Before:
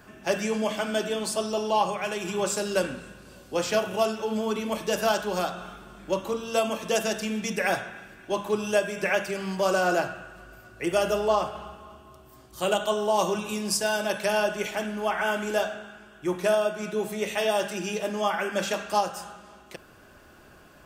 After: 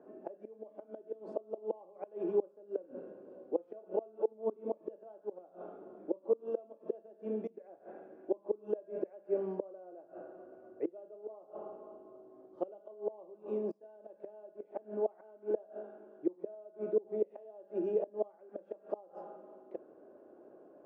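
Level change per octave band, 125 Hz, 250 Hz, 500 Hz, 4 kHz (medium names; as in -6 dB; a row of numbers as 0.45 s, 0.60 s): under -15 dB, -12.0 dB, -10.0 dB, under -40 dB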